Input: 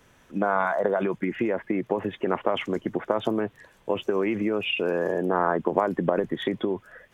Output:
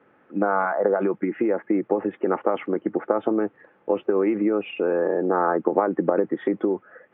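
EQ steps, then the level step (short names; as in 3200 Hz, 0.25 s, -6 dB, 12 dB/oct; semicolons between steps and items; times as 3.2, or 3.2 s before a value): speaker cabinet 170–2300 Hz, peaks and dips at 200 Hz +4 dB, 310 Hz +9 dB, 500 Hz +7 dB, 870 Hz +9 dB, 1300 Hz +6 dB; bell 390 Hz +3 dB 0.26 oct; notch 960 Hz, Q 5.9; -3.0 dB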